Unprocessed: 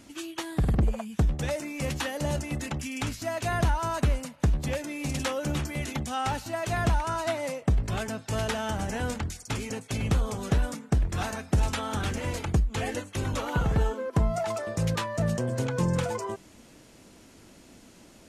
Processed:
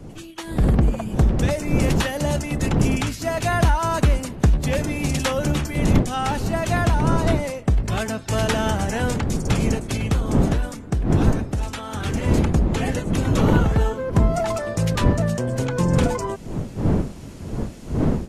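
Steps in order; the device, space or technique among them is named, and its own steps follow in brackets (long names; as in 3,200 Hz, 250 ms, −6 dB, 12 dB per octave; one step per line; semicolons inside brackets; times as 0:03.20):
smartphone video outdoors (wind on the microphone 230 Hz −28 dBFS; automatic gain control gain up to 11.5 dB; level −3.5 dB; AAC 128 kbit/s 48,000 Hz)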